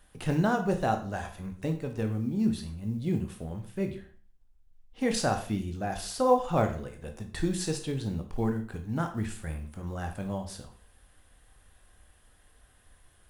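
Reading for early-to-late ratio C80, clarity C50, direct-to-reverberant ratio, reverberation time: 14.5 dB, 10.0 dB, 5.0 dB, 0.45 s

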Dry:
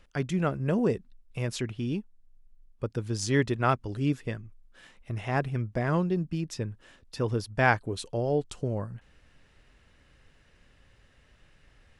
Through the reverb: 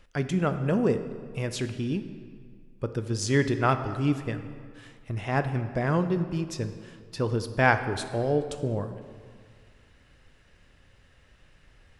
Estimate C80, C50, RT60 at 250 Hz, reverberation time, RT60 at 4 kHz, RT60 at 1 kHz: 11.5 dB, 10.5 dB, 2.0 s, 2.1 s, 1.4 s, 2.0 s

